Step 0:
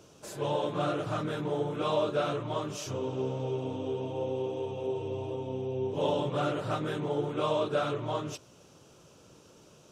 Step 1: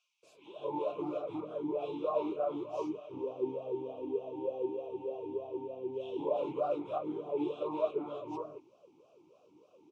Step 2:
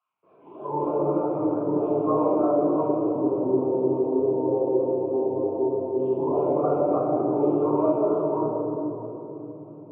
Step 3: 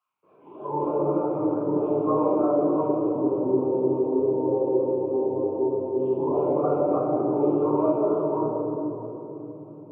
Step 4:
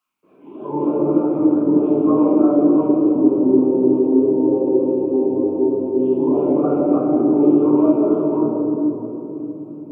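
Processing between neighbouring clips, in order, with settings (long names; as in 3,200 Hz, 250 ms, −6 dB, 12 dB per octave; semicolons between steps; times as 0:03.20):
parametric band 1,700 Hz −6 dB 1.1 octaves; multiband delay without the direct sound highs, lows 230 ms, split 1,800 Hz; formant filter swept between two vowels a-u 3.3 Hz; level +5.5 dB
low-pass filter 1,500 Hz 24 dB per octave; convolution reverb RT60 3.5 s, pre-delay 3 ms, DRR −4 dB; level −2.5 dB
notch filter 680 Hz, Q 12
octave-band graphic EQ 125/250/500/1,000 Hz −8/+9/−6/−8 dB; level +8 dB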